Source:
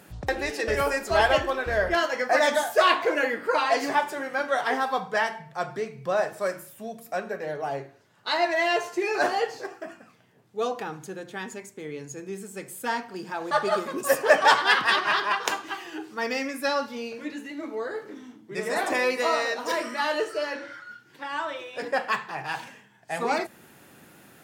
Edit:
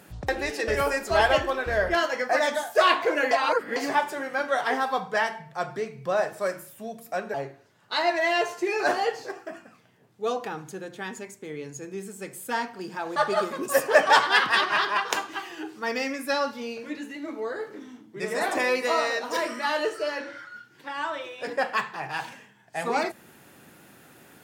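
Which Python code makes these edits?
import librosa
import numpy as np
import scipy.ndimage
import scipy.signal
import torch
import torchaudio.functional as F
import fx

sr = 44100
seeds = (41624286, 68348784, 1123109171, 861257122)

y = fx.edit(x, sr, fx.fade_out_to(start_s=2.12, length_s=0.63, floor_db=-6.5),
    fx.reverse_span(start_s=3.31, length_s=0.45),
    fx.cut(start_s=7.34, length_s=0.35), tone=tone)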